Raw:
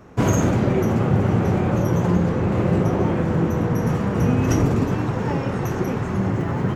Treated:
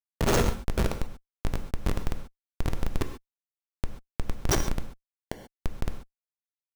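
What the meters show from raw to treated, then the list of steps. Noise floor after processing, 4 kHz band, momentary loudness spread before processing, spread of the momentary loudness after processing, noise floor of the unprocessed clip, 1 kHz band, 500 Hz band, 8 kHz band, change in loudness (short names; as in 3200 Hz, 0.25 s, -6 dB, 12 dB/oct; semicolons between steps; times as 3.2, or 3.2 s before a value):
under -85 dBFS, +0.5 dB, 5 LU, 16 LU, -26 dBFS, -11.0 dB, -12.0 dB, -1.5 dB, -11.5 dB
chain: steep high-pass 370 Hz 72 dB/oct; bell 5800 Hz +14.5 dB 0.51 oct; Schmitt trigger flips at -16.5 dBFS; non-linear reverb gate 0.16 s flat, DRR 7 dB; gain +4.5 dB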